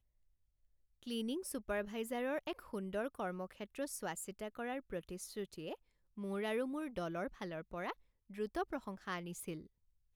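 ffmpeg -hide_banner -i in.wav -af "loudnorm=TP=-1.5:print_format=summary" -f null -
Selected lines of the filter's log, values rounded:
Input Integrated:    -42.7 LUFS
Input True Peak:     -26.8 dBTP
Input LRA:             3.6 LU
Input Threshold:     -53.0 LUFS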